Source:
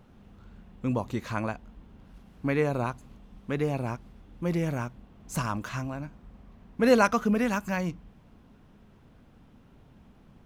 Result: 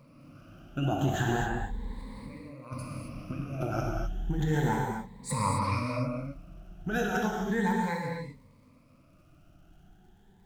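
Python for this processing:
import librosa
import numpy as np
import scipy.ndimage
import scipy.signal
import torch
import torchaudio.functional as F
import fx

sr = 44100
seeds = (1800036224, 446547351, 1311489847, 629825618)

y = fx.spec_ripple(x, sr, per_octave=0.96, drift_hz=0.38, depth_db=20)
y = fx.doppler_pass(y, sr, speed_mps=30, closest_m=26.0, pass_at_s=2.77)
y = fx.over_compress(y, sr, threshold_db=-34.0, ratio=-0.5)
y = fx.dmg_crackle(y, sr, seeds[0], per_s=190.0, level_db=-63.0)
y = fx.rev_gated(y, sr, seeds[1], gate_ms=290, shape='flat', drr_db=-1.5)
y = y * 10.0 ** (1.5 / 20.0)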